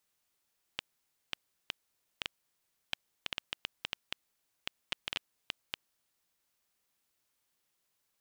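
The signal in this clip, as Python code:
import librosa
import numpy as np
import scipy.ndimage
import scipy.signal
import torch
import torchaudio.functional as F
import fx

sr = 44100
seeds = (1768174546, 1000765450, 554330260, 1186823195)

y = fx.geiger_clicks(sr, seeds[0], length_s=5.62, per_s=4.3, level_db=-15.5)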